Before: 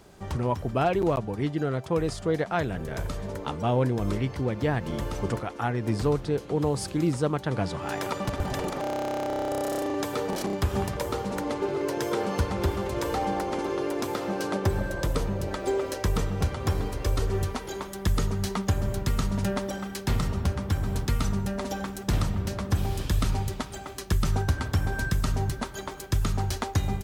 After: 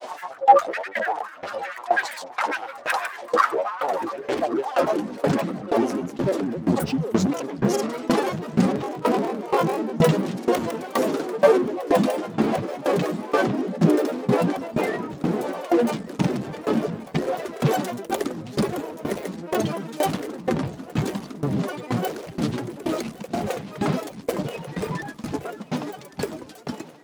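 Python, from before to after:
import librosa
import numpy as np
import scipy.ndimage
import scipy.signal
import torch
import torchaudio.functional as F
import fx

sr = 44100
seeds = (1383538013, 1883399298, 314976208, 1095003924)

p1 = fx.fade_out_tail(x, sr, length_s=4.1)
p2 = p1 + 0.34 * np.pad(p1, (int(5.1 * sr / 1000.0), 0))[:len(p1)]
p3 = fx.over_compress(p2, sr, threshold_db=-36.0, ratio=-1.0)
p4 = p2 + (p3 * 10.0 ** (2.5 / 20.0))
p5 = 10.0 ** (-24.0 / 20.0) * np.tanh(p4 / 10.0 ** (-24.0 / 20.0))
p6 = fx.filter_sweep_highpass(p5, sr, from_hz=1000.0, to_hz=280.0, start_s=3.17, end_s=5.32, q=7.4)
p7 = fx.granulator(p6, sr, seeds[0], grain_ms=100.0, per_s=20.0, spray_ms=100.0, spread_st=12)
p8 = fx.echo_thinned(p7, sr, ms=1128, feedback_pct=73, hz=220.0, wet_db=-14.5)
p9 = fx.tremolo_decay(p8, sr, direction='decaying', hz=2.1, depth_db=19)
y = p9 * 10.0 ** (7.5 / 20.0)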